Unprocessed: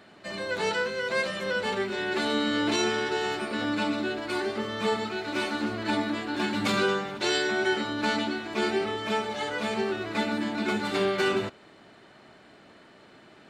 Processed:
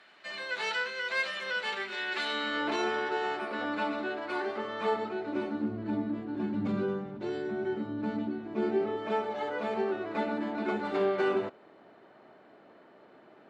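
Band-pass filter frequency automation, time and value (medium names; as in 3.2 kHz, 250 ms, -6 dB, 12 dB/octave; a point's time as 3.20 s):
band-pass filter, Q 0.73
2.27 s 2.3 kHz
2.74 s 870 Hz
4.82 s 870 Hz
5.72 s 160 Hz
8.32 s 160 Hz
9.15 s 570 Hz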